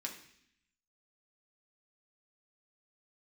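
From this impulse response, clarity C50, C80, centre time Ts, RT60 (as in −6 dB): 8.5 dB, 11.5 dB, 20 ms, 0.65 s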